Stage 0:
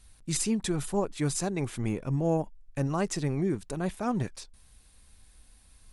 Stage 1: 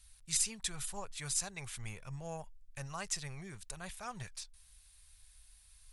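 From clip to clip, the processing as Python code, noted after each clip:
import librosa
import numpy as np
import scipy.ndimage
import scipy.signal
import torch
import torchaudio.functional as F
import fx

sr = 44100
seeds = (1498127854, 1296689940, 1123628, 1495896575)

y = fx.tone_stack(x, sr, knobs='10-0-10')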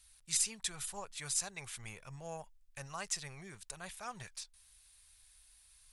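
y = fx.low_shelf(x, sr, hz=160.0, db=-9.5)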